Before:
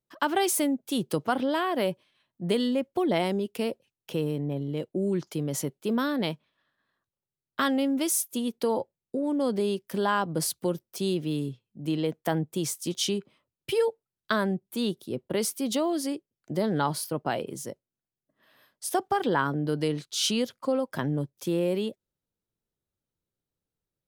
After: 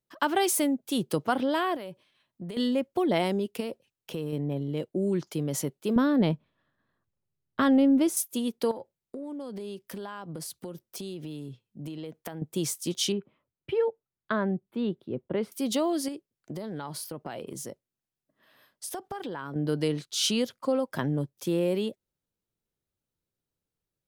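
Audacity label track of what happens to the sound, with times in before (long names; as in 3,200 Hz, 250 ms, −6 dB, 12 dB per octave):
1.760000	2.570000	downward compressor 16 to 1, threshold −34 dBFS
3.600000	4.330000	downward compressor 4 to 1, threshold −29 dBFS
5.960000	8.170000	spectral tilt −3 dB per octave
8.710000	12.420000	downward compressor 10 to 1, threshold −34 dBFS
13.120000	15.520000	high-frequency loss of the air 500 metres
16.080000	19.560000	downward compressor 5 to 1, threshold −33 dBFS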